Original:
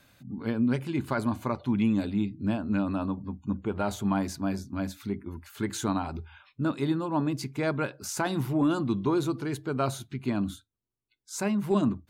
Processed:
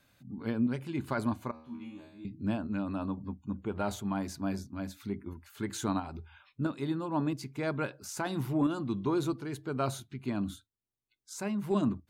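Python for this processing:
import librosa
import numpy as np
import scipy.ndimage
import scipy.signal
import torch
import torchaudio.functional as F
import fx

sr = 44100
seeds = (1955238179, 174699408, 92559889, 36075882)

y = fx.tremolo_shape(x, sr, shape='saw_up', hz=1.5, depth_pct=45)
y = fx.comb_fb(y, sr, f0_hz=79.0, decay_s=0.66, harmonics='all', damping=0.0, mix_pct=100, at=(1.51, 2.25))
y = y * 10.0 ** (-2.5 / 20.0)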